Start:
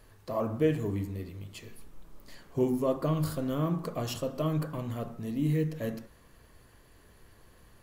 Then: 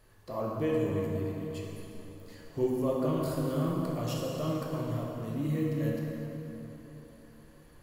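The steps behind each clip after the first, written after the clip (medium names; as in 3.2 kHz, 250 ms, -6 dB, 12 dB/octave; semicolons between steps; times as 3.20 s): plate-style reverb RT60 3.8 s, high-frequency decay 0.65×, DRR -2.5 dB; trim -5 dB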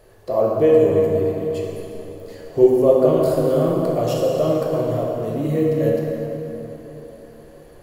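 high-order bell 520 Hz +10 dB 1.3 oct; trim +7.5 dB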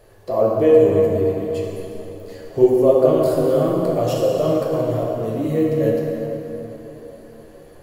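flange 1.9 Hz, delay 8.7 ms, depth 2.1 ms, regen -41%; trim +4.5 dB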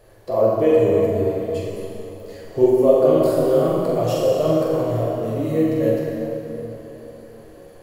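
flutter echo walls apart 7.5 m, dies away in 0.51 s; trim -1.5 dB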